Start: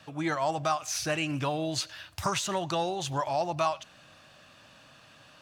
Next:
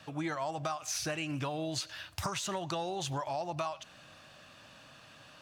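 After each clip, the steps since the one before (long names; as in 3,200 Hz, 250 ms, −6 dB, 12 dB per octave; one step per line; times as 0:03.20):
downward compressor, threshold −32 dBFS, peak gain reduction 9.5 dB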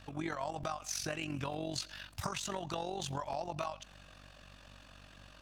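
mains hum 50 Hz, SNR 18 dB
amplitude modulation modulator 46 Hz, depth 55%
regular buffer underruns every 0.30 s, samples 128, repeat, from 0:00.33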